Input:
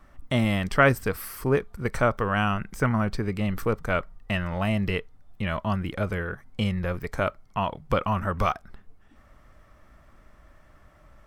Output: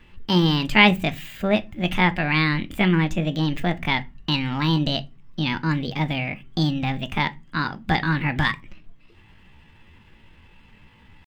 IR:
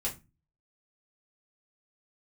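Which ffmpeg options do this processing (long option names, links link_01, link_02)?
-filter_complex "[0:a]equalizer=frequency=125:width_type=o:width=1:gain=7,equalizer=frequency=2000:width_type=o:width=1:gain=8,equalizer=frequency=8000:width_type=o:width=1:gain=-6,asetrate=66075,aresample=44100,atempo=0.66742,asplit=2[link_01][link_02];[1:a]atrim=start_sample=2205[link_03];[link_02][link_03]afir=irnorm=-1:irlink=0,volume=-12.5dB[link_04];[link_01][link_04]amix=inputs=2:normalize=0,volume=-1.5dB"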